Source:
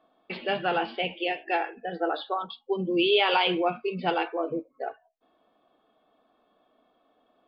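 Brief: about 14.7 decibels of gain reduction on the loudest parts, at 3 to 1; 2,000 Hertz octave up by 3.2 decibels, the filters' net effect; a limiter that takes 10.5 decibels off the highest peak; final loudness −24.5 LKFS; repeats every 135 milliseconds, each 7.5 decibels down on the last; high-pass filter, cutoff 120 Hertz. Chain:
high-pass filter 120 Hz
parametric band 2,000 Hz +4.5 dB
downward compressor 3 to 1, threshold −38 dBFS
brickwall limiter −33 dBFS
repeating echo 135 ms, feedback 42%, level −7.5 dB
level +17.5 dB

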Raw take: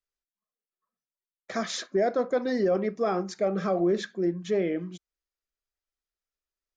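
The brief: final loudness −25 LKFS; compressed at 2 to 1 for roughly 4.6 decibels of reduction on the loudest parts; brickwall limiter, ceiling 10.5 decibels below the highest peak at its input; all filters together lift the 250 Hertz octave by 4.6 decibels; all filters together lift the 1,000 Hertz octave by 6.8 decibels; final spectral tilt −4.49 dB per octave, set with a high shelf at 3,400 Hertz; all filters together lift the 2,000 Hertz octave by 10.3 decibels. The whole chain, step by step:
parametric band 250 Hz +6 dB
parametric band 1,000 Hz +7 dB
parametric band 2,000 Hz +8.5 dB
high-shelf EQ 3,400 Hz +6.5 dB
downward compressor 2 to 1, threshold −25 dBFS
level +7.5 dB
brickwall limiter −16 dBFS

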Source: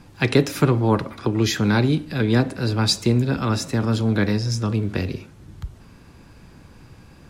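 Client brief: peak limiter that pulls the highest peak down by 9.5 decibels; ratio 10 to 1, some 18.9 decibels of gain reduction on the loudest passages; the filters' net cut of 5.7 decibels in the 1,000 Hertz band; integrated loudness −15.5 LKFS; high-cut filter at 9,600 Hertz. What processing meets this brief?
low-pass filter 9,600 Hz
parametric band 1,000 Hz −7.5 dB
downward compressor 10 to 1, threshold −32 dBFS
level +24 dB
brickwall limiter −4.5 dBFS

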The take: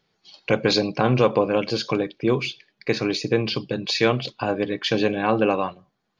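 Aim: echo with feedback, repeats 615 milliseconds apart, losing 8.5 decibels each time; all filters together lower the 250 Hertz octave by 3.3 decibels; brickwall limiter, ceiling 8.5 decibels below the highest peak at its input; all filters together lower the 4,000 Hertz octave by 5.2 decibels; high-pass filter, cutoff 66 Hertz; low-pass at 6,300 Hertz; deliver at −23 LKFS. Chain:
high-pass filter 66 Hz
low-pass filter 6,300 Hz
parametric band 250 Hz −4.5 dB
parametric band 4,000 Hz −5.5 dB
brickwall limiter −15 dBFS
repeating echo 615 ms, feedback 38%, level −8.5 dB
level +4 dB

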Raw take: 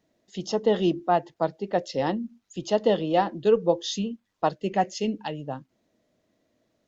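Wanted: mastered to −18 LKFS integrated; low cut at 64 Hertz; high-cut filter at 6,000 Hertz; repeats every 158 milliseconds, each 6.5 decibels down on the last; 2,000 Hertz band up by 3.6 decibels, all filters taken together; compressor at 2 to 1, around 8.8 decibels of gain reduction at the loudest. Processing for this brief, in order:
high-pass filter 64 Hz
low-pass filter 6,000 Hz
parametric band 2,000 Hz +4.5 dB
downward compressor 2 to 1, threshold −32 dBFS
repeating echo 158 ms, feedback 47%, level −6.5 dB
level +14.5 dB

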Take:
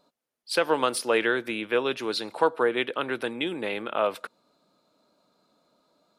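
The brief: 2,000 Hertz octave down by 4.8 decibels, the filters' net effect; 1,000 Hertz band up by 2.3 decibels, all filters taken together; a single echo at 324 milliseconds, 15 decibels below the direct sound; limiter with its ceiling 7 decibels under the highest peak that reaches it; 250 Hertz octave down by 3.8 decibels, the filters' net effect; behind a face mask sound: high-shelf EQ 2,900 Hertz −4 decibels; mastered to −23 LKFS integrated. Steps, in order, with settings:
parametric band 250 Hz −6 dB
parametric band 1,000 Hz +5.5 dB
parametric band 2,000 Hz −7.5 dB
brickwall limiter −14.5 dBFS
high-shelf EQ 2,900 Hz −4 dB
single-tap delay 324 ms −15 dB
level +7 dB

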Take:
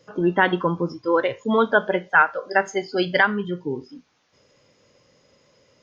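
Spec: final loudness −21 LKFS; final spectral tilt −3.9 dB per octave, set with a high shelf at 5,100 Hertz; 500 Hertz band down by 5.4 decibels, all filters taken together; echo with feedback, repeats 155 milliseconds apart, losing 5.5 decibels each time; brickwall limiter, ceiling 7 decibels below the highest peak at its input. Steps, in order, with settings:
parametric band 500 Hz −7 dB
high-shelf EQ 5,100 Hz −3.5 dB
brickwall limiter −12 dBFS
repeating echo 155 ms, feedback 53%, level −5.5 dB
level +3.5 dB

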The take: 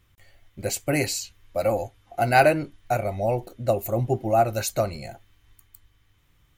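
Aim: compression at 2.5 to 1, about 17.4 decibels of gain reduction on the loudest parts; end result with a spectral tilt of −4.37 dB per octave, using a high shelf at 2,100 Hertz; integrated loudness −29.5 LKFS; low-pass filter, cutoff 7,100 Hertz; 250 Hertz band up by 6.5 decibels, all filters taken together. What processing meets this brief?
low-pass filter 7,100 Hz
parametric band 250 Hz +8.5 dB
high-shelf EQ 2,100 Hz +8 dB
downward compressor 2.5 to 1, threshold −38 dBFS
level +6.5 dB

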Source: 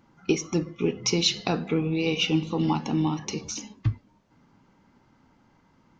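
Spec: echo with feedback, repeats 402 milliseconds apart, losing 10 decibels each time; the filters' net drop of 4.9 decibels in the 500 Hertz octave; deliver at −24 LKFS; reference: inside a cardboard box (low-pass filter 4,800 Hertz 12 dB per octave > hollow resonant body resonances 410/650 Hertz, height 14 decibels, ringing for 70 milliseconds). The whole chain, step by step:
low-pass filter 4,800 Hz 12 dB per octave
parametric band 500 Hz −7 dB
repeating echo 402 ms, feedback 32%, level −10 dB
hollow resonant body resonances 410/650 Hz, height 14 dB, ringing for 70 ms
level +2 dB

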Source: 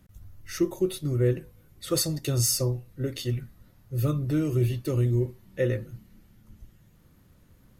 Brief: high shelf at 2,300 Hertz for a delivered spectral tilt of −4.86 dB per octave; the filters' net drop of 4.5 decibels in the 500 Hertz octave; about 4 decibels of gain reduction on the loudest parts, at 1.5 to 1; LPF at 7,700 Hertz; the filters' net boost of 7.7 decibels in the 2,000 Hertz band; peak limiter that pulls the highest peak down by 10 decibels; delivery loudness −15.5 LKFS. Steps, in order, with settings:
low-pass filter 7,700 Hz
parametric band 500 Hz −7 dB
parametric band 2,000 Hz +7 dB
high-shelf EQ 2,300 Hz +5 dB
downward compressor 1.5 to 1, threshold −31 dBFS
level +18.5 dB
brickwall limiter −5.5 dBFS

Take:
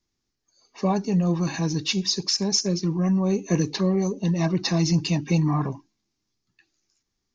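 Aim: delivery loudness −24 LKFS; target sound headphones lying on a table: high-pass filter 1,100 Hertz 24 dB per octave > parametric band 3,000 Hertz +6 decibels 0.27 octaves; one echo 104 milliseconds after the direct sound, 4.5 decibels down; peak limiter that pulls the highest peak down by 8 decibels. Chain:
brickwall limiter −18 dBFS
high-pass filter 1,100 Hz 24 dB per octave
parametric band 3,000 Hz +6 dB 0.27 octaves
single-tap delay 104 ms −4.5 dB
level +8 dB

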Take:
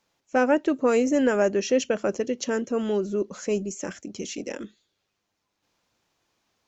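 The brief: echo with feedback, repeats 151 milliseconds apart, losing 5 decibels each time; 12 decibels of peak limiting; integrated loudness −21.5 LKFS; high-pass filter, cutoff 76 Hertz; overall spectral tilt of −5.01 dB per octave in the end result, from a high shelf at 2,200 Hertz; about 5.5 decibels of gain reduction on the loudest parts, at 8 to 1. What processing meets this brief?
high-pass filter 76 Hz
high-shelf EQ 2,200 Hz −7.5 dB
downward compressor 8 to 1, threshold −22 dBFS
brickwall limiter −25.5 dBFS
repeating echo 151 ms, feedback 56%, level −5 dB
level +12.5 dB

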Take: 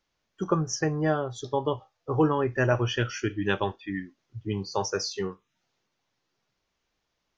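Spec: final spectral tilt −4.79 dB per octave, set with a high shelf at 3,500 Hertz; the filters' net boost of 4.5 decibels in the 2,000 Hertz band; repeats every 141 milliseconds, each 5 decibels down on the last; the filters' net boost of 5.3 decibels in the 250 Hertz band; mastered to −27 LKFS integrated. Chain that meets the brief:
parametric band 250 Hz +7.5 dB
parametric band 2,000 Hz +4 dB
high-shelf EQ 3,500 Hz +7 dB
repeating echo 141 ms, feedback 56%, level −5 dB
level −3.5 dB

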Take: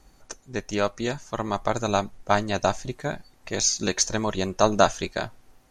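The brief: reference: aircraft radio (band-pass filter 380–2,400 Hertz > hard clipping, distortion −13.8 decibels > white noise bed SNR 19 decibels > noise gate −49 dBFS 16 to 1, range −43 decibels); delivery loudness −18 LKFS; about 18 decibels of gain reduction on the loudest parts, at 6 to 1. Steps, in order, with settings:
downward compressor 6 to 1, threshold −33 dBFS
band-pass filter 380–2,400 Hz
hard clipping −28 dBFS
white noise bed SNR 19 dB
noise gate −49 dBFS 16 to 1, range −43 dB
level +24 dB

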